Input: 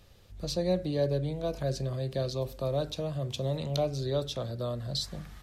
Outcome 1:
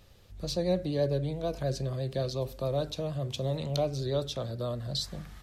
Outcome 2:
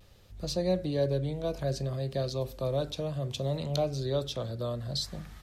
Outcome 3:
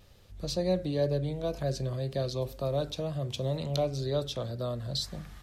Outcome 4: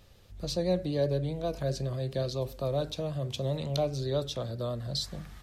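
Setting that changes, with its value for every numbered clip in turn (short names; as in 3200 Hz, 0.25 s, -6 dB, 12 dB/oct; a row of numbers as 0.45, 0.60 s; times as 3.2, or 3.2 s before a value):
vibrato, rate: 11, 0.62, 2, 7.7 Hz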